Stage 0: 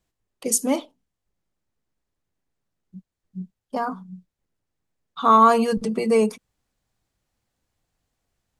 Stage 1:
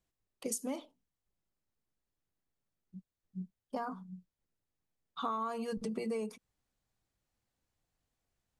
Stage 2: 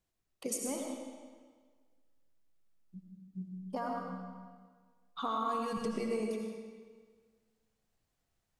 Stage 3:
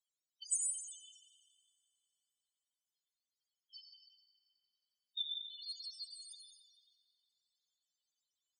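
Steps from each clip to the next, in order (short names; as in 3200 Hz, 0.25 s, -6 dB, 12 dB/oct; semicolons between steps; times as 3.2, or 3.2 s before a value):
compressor 20:1, threshold -25 dBFS, peak gain reduction 16 dB; gain -8 dB
digital reverb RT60 1.6 s, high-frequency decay 0.9×, pre-delay 45 ms, DRR 0.5 dB
brick-wall FIR high-pass 2900 Hz; loudest bins only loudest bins 4; dark delay 90 ms, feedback 82%, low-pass 3800 Hz, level -17 dB; gain +14 dB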